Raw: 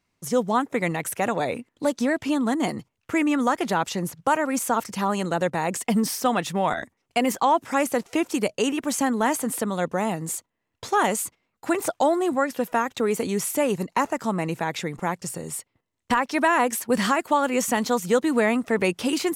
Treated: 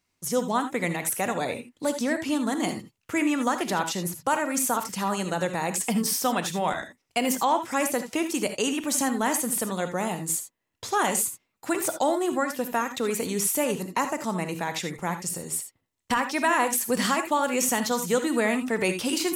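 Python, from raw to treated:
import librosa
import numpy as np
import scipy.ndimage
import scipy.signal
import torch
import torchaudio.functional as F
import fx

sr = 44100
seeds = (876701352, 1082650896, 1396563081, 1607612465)

y = fx.high_shelf(x, sr, hz=3600.0, db=8.0)
y = fx.rev_gated(y, sr, seeds[0], gate_ms=100, shape='rising', drr_db=8.0)
y = y * librosa.db_to_amplitude(-4.0)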